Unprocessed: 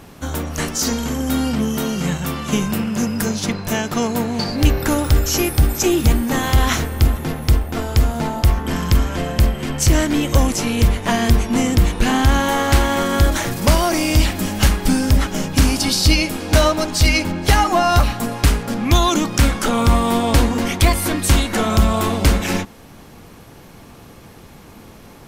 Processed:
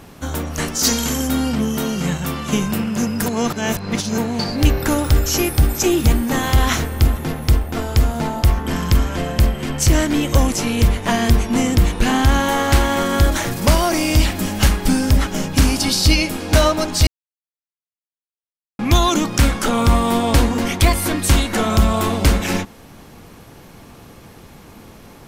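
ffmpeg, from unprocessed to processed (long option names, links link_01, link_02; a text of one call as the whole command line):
ffmpeg -i in.wav -filter_complex "[0:a]asplit=3[link_01][link_02][link_03];[link_01]afade=type=out:start_time=0.83:duration=0.02[link_04];[link_02]highshelf=frequency=2300:gain=10,afade=type=in:start_time=0.83:duration=0.02,afade=type=out:start_time=1.26:duration=0.02[link_05];[link_03]afade=type=in:start_time=1.26:duration=0.02[link_06];[link_04][link_05][link_06]amix=inputs=3:normalize=0,asplit=5[link_07][link_08][link_09][link_10][link_11];[link_07]atrim=end=3.262[link_12];[link_08]atrim=start=3.258:end=4.182,asetpts=PTS-STARTPTS,areverse[link_13];[link_09]atrim=start=4.178:end=17.07,asetpts=PTS-STARTPTS,afade=type=out:start_time=12.888:duration=0.004:curve=hsin[link_14];[link_10]atrim=start=17.07:end=18.79,asetpts=PTS-STARTPTS,volume=0[link_15];[link_11]atrim=start=18.79,asetpts=PTS-STARTPTS,afade=type=in:duration=0.004:curve=hsin[link_16];[link_12][link_13]acrossfade=duration=0.004:curve1=hsin:curve2=hsin[link_17];[link_14][link_15][link_16]concat=n=3:v=0:a=1[link_18];[link_17][link_18]acrossfade=duration=0.004:curve1=hsin:curve2=hsin" out.wav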